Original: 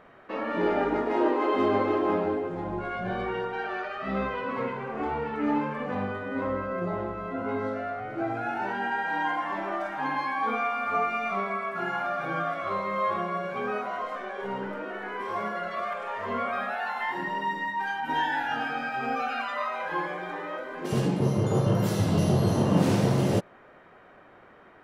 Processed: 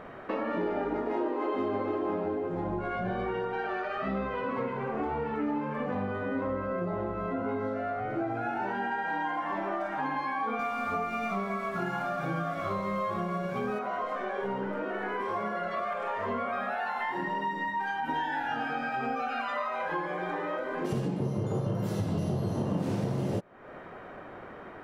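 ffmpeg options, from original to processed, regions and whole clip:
ffmpeg -i in.wav -filter_complex "[0:a]asettb=1/sr,asplit=3[link_01][link_02][link_03];[link_01]atrim=end=10.594[link_04];[link_02]atrim=start=10.59:end=13.79,asetpts=PTS-STARTPTS,afade=type=in:duration=0.004:curve=qsin,afade=type=out:start_time=3.196:duration=0.004:curve=qsin,bass=frequency=250:gain=9,treble=frequency=4000:gain=9,aeval=exprs='sgn(val(0))*max(abs(val(0))-0.00335,0)':channel_layout=same[link_05];[link_03]atrim=start=13.786[link_06];[link_04][link_05]acrossfade=duration=0.004:curve1=hsin:curve2=qsin[link_07];[link_07][link_06]acrossfade=duration=0.004:curve1=qsin:curve2=hsin,tiltshelf=frequency=1300:gain=3,acompressor=threshold=-38dB:ratio=4,volume=7dB" out.wav

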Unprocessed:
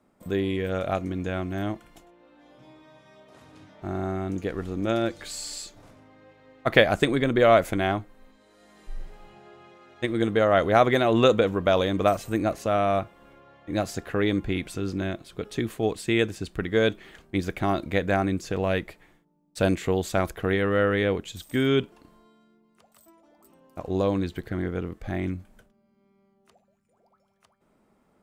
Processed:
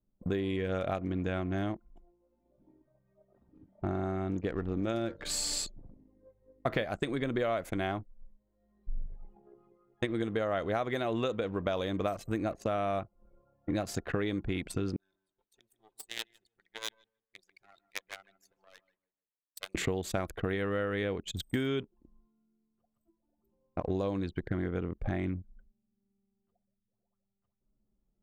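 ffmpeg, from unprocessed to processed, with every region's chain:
ffmpeg -i in.wav -filter_complex "[0:a]asettb=1/sr,asplit=3[link_01][link_02][link_03];[link_01]atrim=end=4.944[link_04];[link_02]atrim=start=4.94:end=6.85,asetpts=PTS-STARTPTS,afade=type=in:duration=0.004:curve=qsin,afade=type=out:start_time=1.906:duration=0.004:curve=qsin,lowshelf=frequency=460:gain=4,bandreject=frequency=91.89:width_type=h:width=4,bandreject=frequency=183.78:width_type=h:width=4,bandreject=frequency=275.67:width_type=h:width=4,bandreject=frequency=367.56:width_type=h:width=4,bandreject=frequency=459.45:width_type=h:width=4,bandreject=frequency=551.34:width_type=h:width=4,bandreject=frequency=643.23:width_type=h:width=4,bandreject=frequency=735.12:width_type=h:width=4,bandreject=frequency=827.01:width_type=h:width=4,bandreject=frequency=918.9:width_type=h:width=4,bandreject=frequency=1010.79:width_type=h:width=4,bandreject=frequency=1102.68:width_type=h:width=4,bandreject=frequency=1194.57:width_type=h:width=4,bandreject=frequency=1286.46:width_type=h:width=4,bandreject=frequency=1378.35:width_type=h:width=4,bandreject=frequency=1470.24:width_type=h:width=4,bandreject=frequency=1562.13:width_type=h:width=4,bandreject=frequency=1654.02:width_type=h:width=4,bandreject=frequency=1745.91:width_type=h:width=4,bandreject=frequency=1837.8:width_type=h:width=4,bandreject=frequency=1929.69:width_type=h:width=4[link_05];[link_03]atrim=start=6.846[link_06];[link_04][link_05]acrossfade=duration=0.004:curve1=hsin:curve2=qsin[link_07];[link_07][link_06]acrossfade=duration=0.004:curve1=qsin:curve2=hsin,asettb=1/sr,asplit=3[link_08][link_09][link_10];[link_08]atrim=end=14.964[link_11];[link_09]atrim=start=14.96:end=19.75,asetpts=PTS-STARTPTS,afade=type=in:duration=0.004:curve=qsin,afade=type=out:start_time=4.786:duration=0.004:curve=qsin,aeval=exprs='max(val(0),0)':channel_layout=same,aderivative,asplit=2[link_12][link_13];[link_13]adelay=154,lowpass=frequency=4600:poles=1,volume=-6dB,asplit=2[link_14][link_15];[link_15]adelay=154,lowpass=frequency=4600:poles=1,volume=0.33,asplit=2[link_16][link_17];[link_17]adelay=154,lowpass=frequency=4600:poles=1,volume=0.33,asplit=2[link_18][link_19];[link_19]adelay=154,lowpass=frequency=4600:poles=1,volume=0.33[link_20];[link_12][link_14][link_16][link_18][link_20]amix=inputs=5:normalize=0,atrim=end_sample=211239[link_21];[link_10]atrim=start=19.746[link_22];[link_11][link_21]acrossfade=duration=0.004:curve1=hsin:curve2=qsin[link_23];[link_23][link_22]acrossfade=duration=0.004:curve1=qsin:curve2=hsin,anlmdn=0.631,acompressor=threshold=-34dB:ratio=8,volume=5dB" out.wav

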